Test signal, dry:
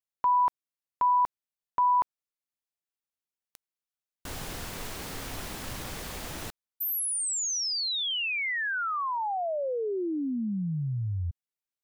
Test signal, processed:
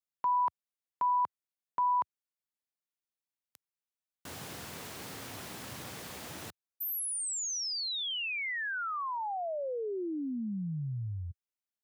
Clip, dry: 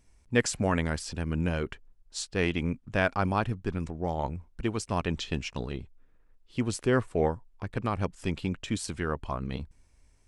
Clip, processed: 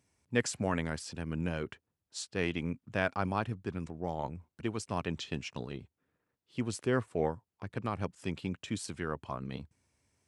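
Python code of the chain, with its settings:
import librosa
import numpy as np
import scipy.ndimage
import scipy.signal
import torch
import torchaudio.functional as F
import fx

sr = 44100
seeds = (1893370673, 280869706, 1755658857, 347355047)

y = scipy.signal.sosfilt(scipy.signal.butter(4, 89.0, 'highpass', fs=sr, output='sos'), x)
y = F.gain(torch.from_numpy(y), -5.0).numpy()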